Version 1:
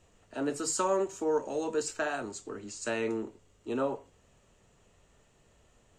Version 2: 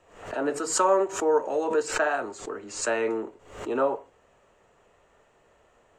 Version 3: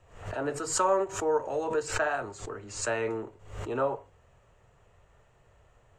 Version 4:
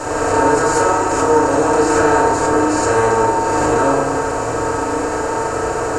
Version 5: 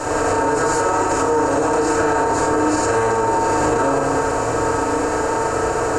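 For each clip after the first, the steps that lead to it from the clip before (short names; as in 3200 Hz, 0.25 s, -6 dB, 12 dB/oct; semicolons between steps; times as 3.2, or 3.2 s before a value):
three-band isolator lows -14 dB, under 370 Hz, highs -13 dB, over 2200 Hz; backwards sustainer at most 100 dB/s; gain +8.5 dB
resonant low shelf 170 Hz +11.5 dB, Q 1.5; ending taper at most 410 dB/s; gain -3 dB
per-bin compression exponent 0.2; FDN reverb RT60 1 s, low-frequency decay 1.4×, high-frequency decay 0.35×, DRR -8.5 dB; gain -4 dB
limiter -9 dBFS, peak gain reduction 7.5 dB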